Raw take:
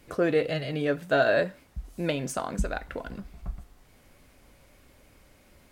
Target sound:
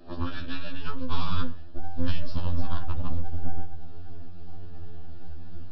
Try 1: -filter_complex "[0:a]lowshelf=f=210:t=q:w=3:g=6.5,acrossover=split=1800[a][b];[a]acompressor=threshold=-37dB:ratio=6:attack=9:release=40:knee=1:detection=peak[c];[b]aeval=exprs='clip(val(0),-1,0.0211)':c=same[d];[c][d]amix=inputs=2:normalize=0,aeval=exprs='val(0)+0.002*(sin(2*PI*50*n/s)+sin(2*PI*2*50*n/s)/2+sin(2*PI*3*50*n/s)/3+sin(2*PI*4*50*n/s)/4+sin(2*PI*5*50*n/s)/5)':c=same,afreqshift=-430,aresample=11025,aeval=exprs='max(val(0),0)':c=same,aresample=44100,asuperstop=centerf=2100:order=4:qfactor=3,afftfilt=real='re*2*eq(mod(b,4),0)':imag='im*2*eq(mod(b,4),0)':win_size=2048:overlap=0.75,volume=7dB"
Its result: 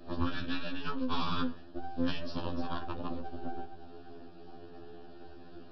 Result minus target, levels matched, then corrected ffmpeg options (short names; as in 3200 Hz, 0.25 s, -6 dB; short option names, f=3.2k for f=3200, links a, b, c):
125 Hz band -9.0 dB
-filter_complex "[0:a]lowshelf=f=210:t=q:w=3:g=6.5,acrossover=split=1800[a][b];[a]acompressor=threshold=-37dB:ratio=6:attack=9:release=40:knee=1:detection=peak[c];[b]aeval=exprs='clip(val(0),-1,0.0211)':c=same[d];[c][d]amix=inputs=2:normalize=0,aeval=exprs='val(0)+0.002*(sin(2*PI*50*n/s)+sin(2*PI*2*50*n/s)/2+sin(2*PI*3*50*n/s)/3+sin(2*PI*4*50*n/s)/4+sin(2*PI*5*50*n/s)/5)':c=same,afreqshift=-430,aresample=11025,aeval=exprs='max(val(0),0)':c=same,aresample=44100,asuperstop=centerf=2100:order=4:qfactor=3,asubboost=boost=12:cutoff=110,afftfilt=real='re*2*eq(mod(b,4),0)':imag='im*2*eq(mod(b,4),0)':win_size=2048:overlap=0.75,volume=7dB"